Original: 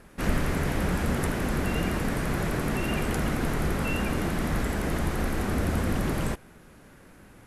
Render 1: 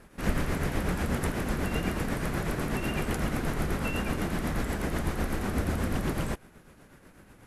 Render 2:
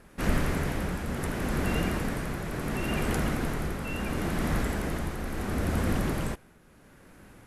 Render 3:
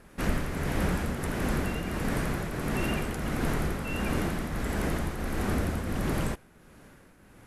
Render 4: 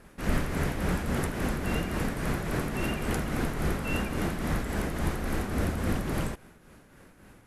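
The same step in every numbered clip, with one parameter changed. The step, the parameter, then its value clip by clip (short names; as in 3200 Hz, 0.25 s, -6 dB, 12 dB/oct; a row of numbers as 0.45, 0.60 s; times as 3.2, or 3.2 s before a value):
tremolo, rate: 8.1, 0.72, 1.5, 3.6 Hz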